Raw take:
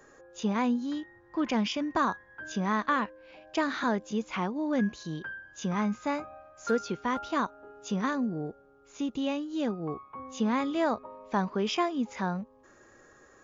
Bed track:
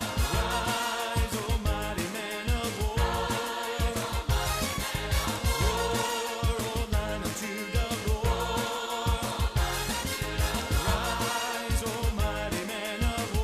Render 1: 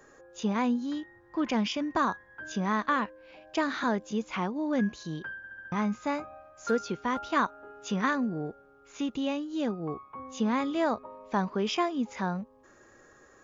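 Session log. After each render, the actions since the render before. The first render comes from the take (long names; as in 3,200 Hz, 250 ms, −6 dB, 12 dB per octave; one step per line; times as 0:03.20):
0:05.37: stutter in place 0.07 s, 5 plays
0:07.32–0:09.17: parametric band 1,900 Hz +6 dB 1.8 octaves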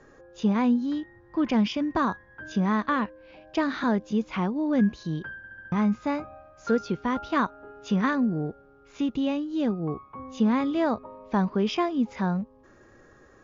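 low-pass filter 5,800 Hz 24 dB per octave
low-shelf EQ 290 Hz +9.5 dB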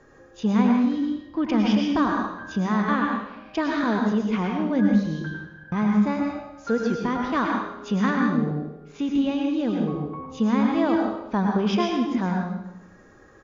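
repeating echo 85 ms, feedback 57%, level −17 dB
dense smooth reverb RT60 0.77 s, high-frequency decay 0.95×, pre-delay 90 ms, DRR 0.5 dB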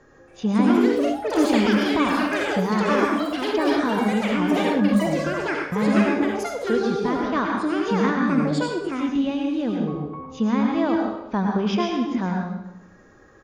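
delay with pitch and tempo change per echo 278 ms, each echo +6 semitones, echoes 3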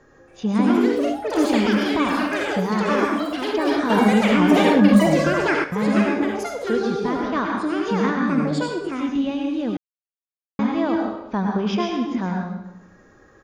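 0:03.90–0:05.64: clip gain +5.5 dB
0:09.77–0:10.59: silence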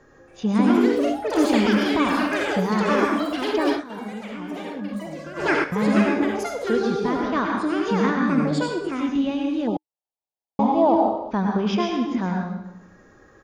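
0:03.69–0:05.50: duck −17 dB, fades 0.15 s
0:09.67–0:11.31: drawn EQ curve 310 Hz 0 dB, 870 Hz +12 dB, 1,600 Hz −20 dB, 3,000 Hz −5 dB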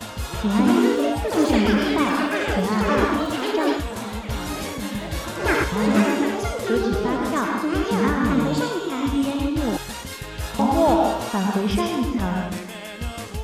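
mix in bed track −2 dB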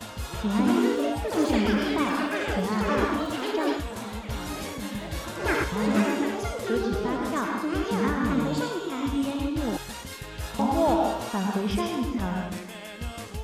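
level −5 dB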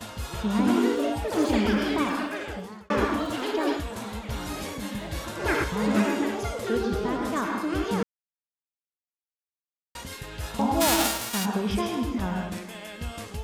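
0:01.99–0:02.90: fade out
0:08.03–0:09.95: silence
0:10.80–0:11.44: spectral envelope flattened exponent 0.3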